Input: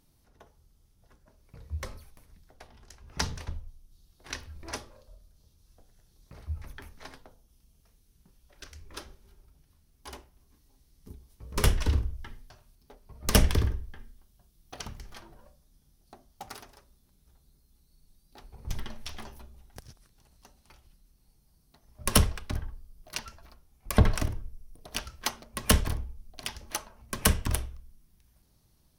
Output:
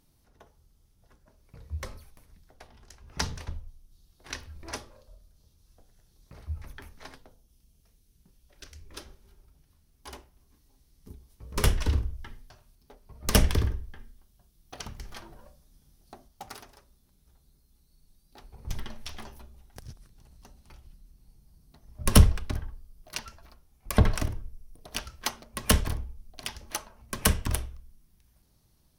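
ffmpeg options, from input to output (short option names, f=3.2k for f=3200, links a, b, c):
-filter_complex "[0:a]asettb=1/sr,asplit=3[a][b][c];[a]atrim=end=7.154[d];[b]atrim=start=7.15:end=9.06,asetpts=PTS-STARTPTS,afade=t=in:d=0.004:c=qsin,afade=t=out:st=1.906:d=0.004:c=qsin,equalizer=f=1.1k:w=0.83:g=-4.5[e];[c]atrim=start=9.056[f];[d][e]acrossfade=d=0.004:c1=hsin:c2=qsin[g];[g][f]acrossfade=d=0.004:c1=qsin:c2=hsin,asettb=1/sr,asplit=3[h][i][j];[h]atrim=end=19.804[k];[i]atrim=start=19.8:end=22.51,asetpts=PTS-STARTPTS,afade=t=in:d=0.004:c=qsin,afade=t=out:st=2.706:d=0.004:c=qsin,lowshelf=f=310:g=8.5[l];[j]atrim=start=22.506[m];[k][l]acrossfade=d=0.004:c1=hsin:c2=qsin[n];[n][m]acrossfade=d=0.004:c1=qsin:c2=hsin,asplit=3[o][p][q];[o]atrim=end=14.992[r];[p]atrim=start=14.988:end=16.282,asetpts=PTS-STARTPTS,volume=3.5dB[s];[q]atrim=start=16.278[t];[r][s]acrossfade=d=0.004:c1=hsin:c2=hsin[u];[u][t]acrossfade=d=0.004:c1=hsin:c2=hsin"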